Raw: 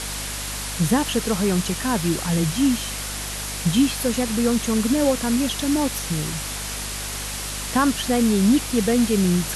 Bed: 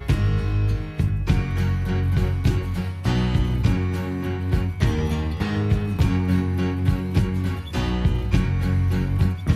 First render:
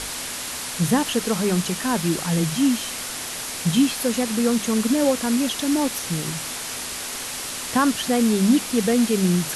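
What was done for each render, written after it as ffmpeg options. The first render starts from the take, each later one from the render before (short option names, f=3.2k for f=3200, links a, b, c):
-af "bandreject=f=50:t=h:w=6,bandreject=f=100:t=h:w=6,bandreject=f=150:t=h:w=6,bandreject=f=200:t=h:w=6"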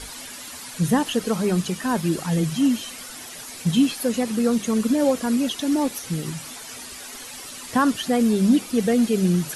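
-af "afftdn=nr=11:nf=-31"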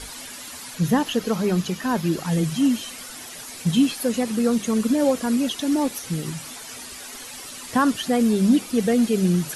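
-filter_complex "[0:a]asettb=1/sr,asplit=3[a][b][c];[a]atrim=end=0.754[d];[b]atrim=start=0.75:end=2.26,asetpts=PTS-STARTPTS,afade=t=in:d=0.004:c=qsin,afade=t=out:st=1.506:d=0.004:c=qsin,equalizer=f=8.8k:w=3.9:g=-11[e];[c]atrim=start=2.256[f];[d][e]acrossfade=d=0.004:c1=hsin:c2=qsin[g];[g][f]acrossfade=d=0.004:c1=qsin:c2=hsin"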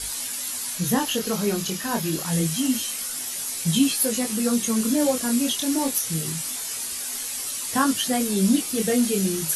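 -af "crystalizer=i=3:c=0,flanger=delay=18.5:depth=7.2:speed=0.26"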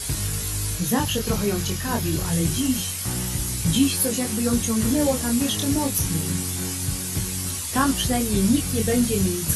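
-filter_complex "[1:a]volume=-8dB[a];[0:a][a]amix=inputs=2:normalize=0"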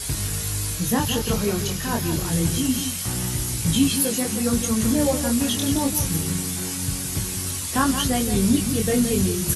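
-af "aecho=1:1:171:0.355"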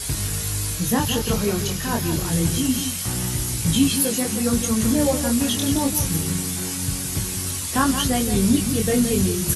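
-af "volume=1dB"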